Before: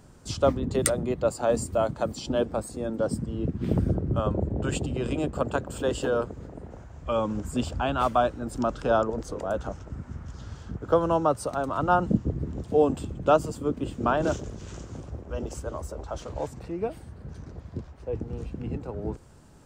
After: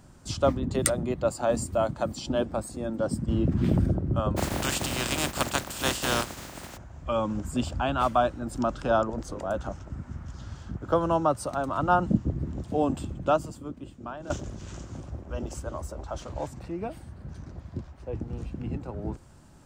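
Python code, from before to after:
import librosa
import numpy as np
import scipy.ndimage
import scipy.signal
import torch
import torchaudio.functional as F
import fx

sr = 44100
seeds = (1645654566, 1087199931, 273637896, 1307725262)

y = fx.env_flatten(x, sr, amount_pct=70, at=(3.28, 3.86))
y = fx.spec_flatten(y, sr, power=0.37, at=(4.36, 6.76), fade=0.02)
y = fx.edit(y, sr, fx.fade_out_to(start_s=13.12, length_s=1.18, curve='qua', floor_db=-14.5), tone=tone)
y = fx.peak_eq(y, sr, hz=450.0, db=-9.5, octaves=0.24)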